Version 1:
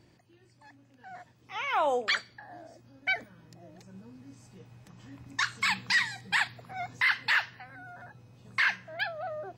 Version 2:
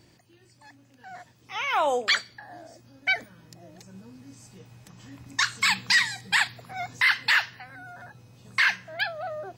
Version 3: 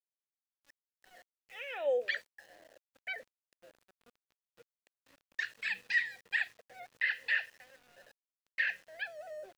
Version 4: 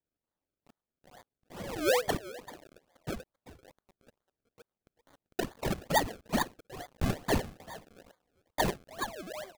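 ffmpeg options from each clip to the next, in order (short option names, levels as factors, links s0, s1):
-af "highshelf=f=3700:g=8.5,volume=1.33"
-filter_complex "[0:a]asplit=3[s0][s1][s2];[s0]bandpass=f=530:t=q:w=8,volume=1[s3];[s1]bandpass=f=1840:t=q:w=8,volume=0.501[s4];[s2]bandpass=f=2480:t=q:w=8,volume=0.355[s5];[s3][s4][s5]amix=inputs=3:normalize=0,aeval=exprs='val(0)*gte(abs(val(0)),0.0015)':c=same"
-filter_complex "[0:a]asplit=2[s0][s1];[s1]adelay=390,highpass=300,lowpass=3400,asoftclip=type=hard:threshold=0.0355,volume=0.178[s2];[s0][s2]amix=inputs=2:normalize=0,acrusher=samples=32:mix=1:aa=0.000001:lfo=1:lforange=32:lforate=2.3,volume=1.5"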